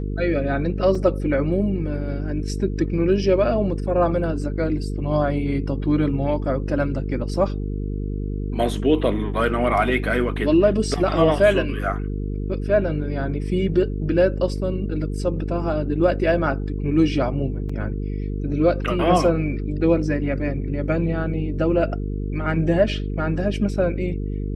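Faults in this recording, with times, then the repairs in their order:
buzz 50 Hz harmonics 9 -26 dBFS
0.95 gap 3.6 ms
17.69 gap 4.6 ms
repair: de-hum 50 Hz, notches 9; interpolate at 0.95, 3.6 ms; interpolate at 17.69, 4.6 ms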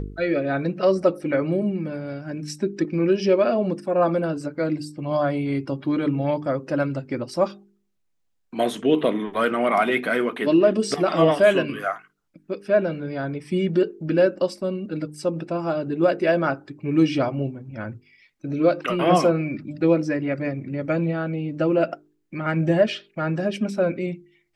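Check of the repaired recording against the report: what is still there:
none

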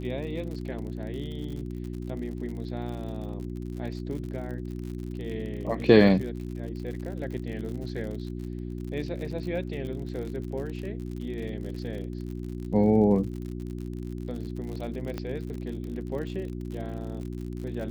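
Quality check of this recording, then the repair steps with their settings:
crackle 60/s -36 dBFS
hum 60 Hz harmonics 6 -35 dBFS
15.18 pop -20 dBFS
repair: de-click; de-hum 60 Hz, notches 6

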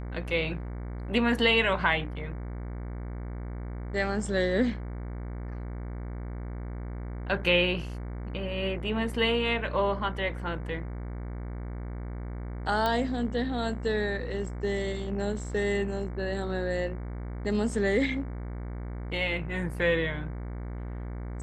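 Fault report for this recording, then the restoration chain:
buzz 60 Hz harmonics 38 -36 dBFS
12.86 pop -15 dBFS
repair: de-click; de-hum 60 Hz, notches 38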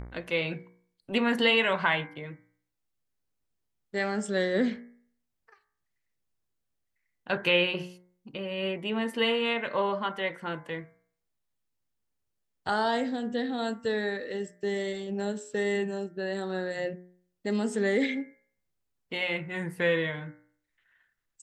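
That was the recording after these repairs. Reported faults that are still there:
none

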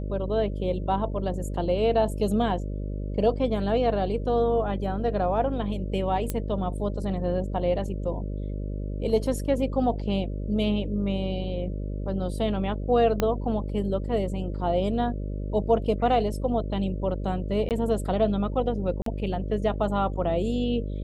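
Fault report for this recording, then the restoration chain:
buzz 50 Hz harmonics 12 -31 dBFS
6.3 pop -13 dBFS
13.2 pop -10 dBFS
17.69–17.71 gap 18 ms
19.02–19.06 gap 43 ms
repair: de-click; de-hum 50 Hz, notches 12; interpolate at 17.69, 18 ms; interpolate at 19.02, 43 ms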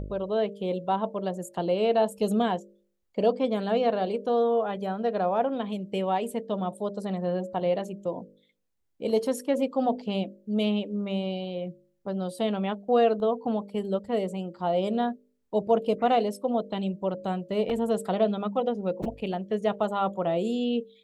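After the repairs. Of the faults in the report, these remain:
13.2 pop

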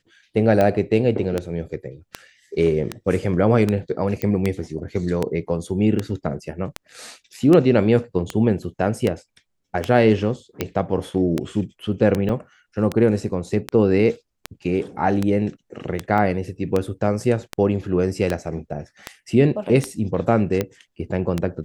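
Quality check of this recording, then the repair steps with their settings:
tick 78 rpm -8 dBFS
4.22 pop -10 dBFS
12.29 gap 3.5 ms
16.18 gap 2.7 ms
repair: de-click; interpolate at 12.29, 3.5 ms; interpolate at 16.18, 2.7 ms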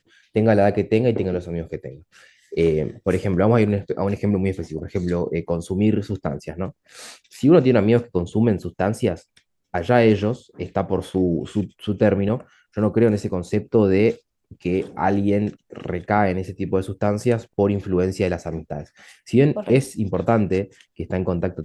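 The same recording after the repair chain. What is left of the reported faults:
none

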